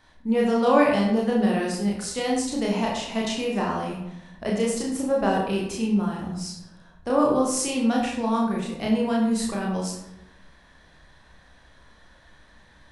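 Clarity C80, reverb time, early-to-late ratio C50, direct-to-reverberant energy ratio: 6.0 dB, 0.90 s, 3.5 dB, −3.0 dB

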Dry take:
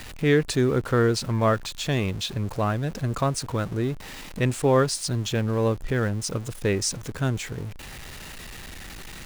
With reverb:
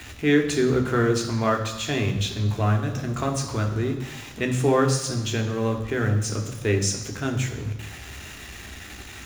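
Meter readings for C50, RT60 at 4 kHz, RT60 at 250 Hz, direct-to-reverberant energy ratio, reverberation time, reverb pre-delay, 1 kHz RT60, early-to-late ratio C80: 8.5 dB, 1.1 s, 1.0 s, 3.0 dB, 1.0 s, 3 ms, 1.1 s, 10.5 dB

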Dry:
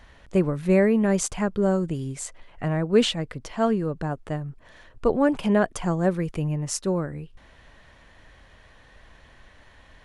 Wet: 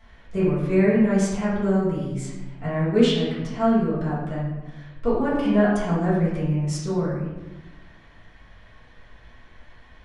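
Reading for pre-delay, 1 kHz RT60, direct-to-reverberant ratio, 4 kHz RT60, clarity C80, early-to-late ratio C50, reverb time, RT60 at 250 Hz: 4 ms, 0.95 s, −10.5 dB, 0.75 s, 4.0 dB, 0.5 dB, 1.1 s, 1.7 s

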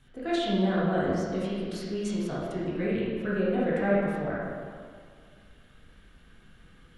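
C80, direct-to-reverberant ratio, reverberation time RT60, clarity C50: 0.0 dB, −8.5 dB, 2.1 s, −3.0 dB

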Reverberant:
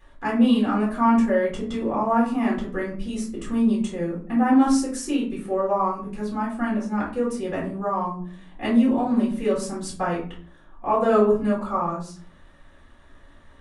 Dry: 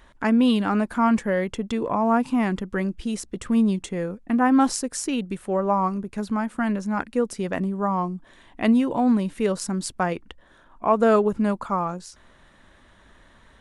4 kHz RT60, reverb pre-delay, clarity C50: 0.30 s, 3 ms, 5.5 dB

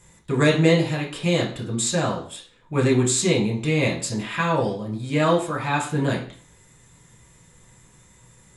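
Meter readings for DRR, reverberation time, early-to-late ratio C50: −3.0 dB, 0.45 s, 8.0 dB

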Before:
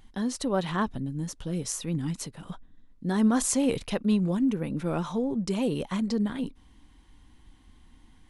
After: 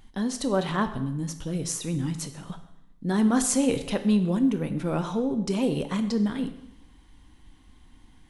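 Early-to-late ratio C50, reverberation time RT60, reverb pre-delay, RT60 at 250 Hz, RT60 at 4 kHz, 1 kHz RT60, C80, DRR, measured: 11.5 dB, 0.80 s, 6 ms, 0.90 s, 0.75 s, 0.80 s, 14.0 dB, 9.0 dB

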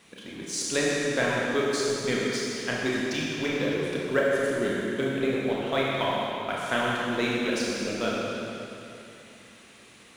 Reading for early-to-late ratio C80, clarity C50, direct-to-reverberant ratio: −1.5 dB, −2.5 dB, −5.5 dB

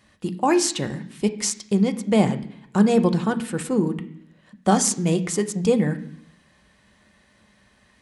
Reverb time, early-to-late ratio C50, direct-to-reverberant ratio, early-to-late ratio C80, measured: 0.70 s, 14.0 dB, 6.0 dB, 17.0 dB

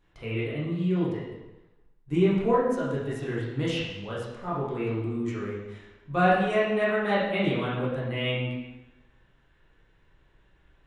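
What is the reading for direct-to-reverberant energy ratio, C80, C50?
−8.0 dB, 3.5 dB, 0.0 dB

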